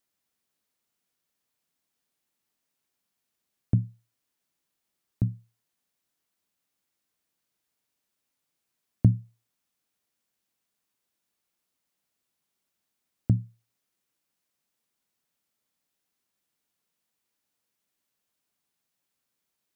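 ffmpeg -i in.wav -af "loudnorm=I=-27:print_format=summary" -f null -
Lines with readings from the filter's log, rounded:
Input Integrated:    -28.6 LUFS
Input True Peak:      -7.6 dBTP
Input LRA:             6.8 LU
Input Threshold:     -40.0 LUFS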